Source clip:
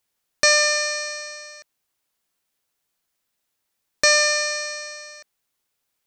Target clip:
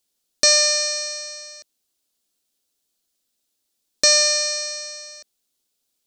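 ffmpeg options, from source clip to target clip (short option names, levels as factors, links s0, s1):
-af "equalizer=f=125:t=o:w=1:g=-10,equalizer=f=250:t=o:w=1:g=5,equalizer=f=1000:t=o:w=1:g=-7,equalizer=f=2000:t=o:w=1:g=-8,equalizer=f=4000:t=o:w=1:g=4,equalizer=f=8000:t=o:w=1:g=3,volume=1.12"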